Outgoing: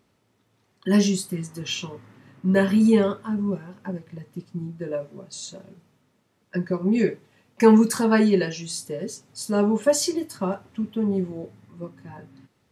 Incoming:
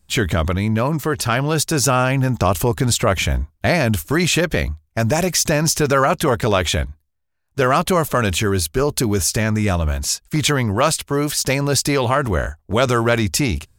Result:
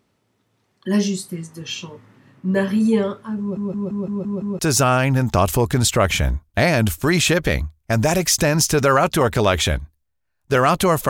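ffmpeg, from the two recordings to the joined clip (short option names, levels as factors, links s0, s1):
-filter_complex "[0:a]apad=whole_dur=11.09,atrim=end=11.09,asplit=7[s0][s1][s2][s3][s4][s5][s6];[s0]atrim=end=3.572[s7];[s1]atrim=start=3.398:end=3.572[s8];[s2]atrim=start=3.398:end=3.572[s9];[s3]atrim=start=3.398:end=3.572[s10];[s4]atrim=start=3.398:end=3.572[s11];[s5]atrim=start=3.398:end=3.572[s12];[s6]atrim=start=3.398:end=3.572[s13];[1:a]atrim=start=1.658:end=8.16[s14];[s7][s8]acrossfade=d=0.004:c1=hsin:c2=hsin[s15];[s15][s9]acrossfade=d=0.004:c1=hsin:c2=hsin[s16];[s16][s10]acrossfade=d=0.004:c1=hsin:c2=hsin[s17];[s17][s11]acrossfade=d=0.004:c1=hsin:c2=hsin[s18];[s18][s12]acrossfade=d=0.004:c1=hsin:c2=hsin[s19];[s19][s13]acrossfade=d=0.004:c1=hsin:c2=hsin[s20];[s20][s14]acrossfade=d=0.004:c1=hsin:c2=hsin"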